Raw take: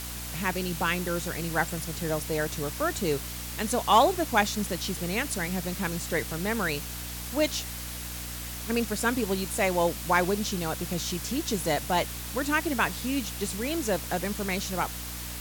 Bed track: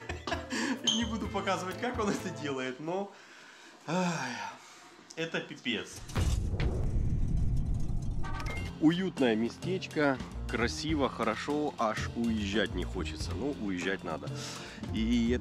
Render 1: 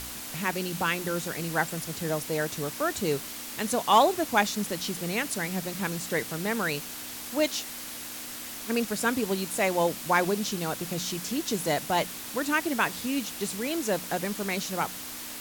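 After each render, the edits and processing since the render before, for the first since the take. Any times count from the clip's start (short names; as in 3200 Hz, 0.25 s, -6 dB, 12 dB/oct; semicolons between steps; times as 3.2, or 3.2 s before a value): de-hum 60 Hz, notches 3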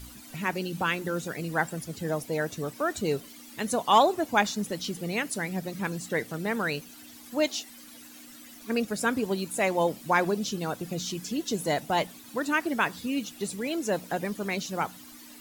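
denoiser 14 dB, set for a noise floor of -39 dBFS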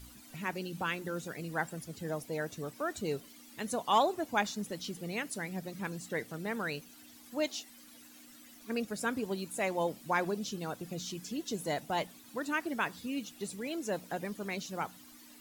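gain -7 dB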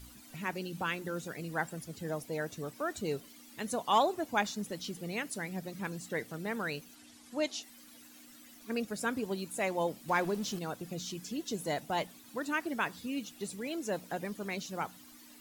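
6.95–7.63 LPF 11000 Hz 24 dB/oct; 10.08–10.59 zero-crossing step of -43 dBFS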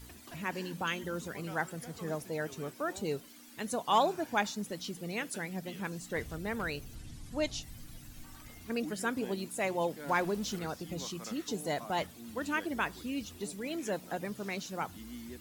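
add bed track -17.5 dB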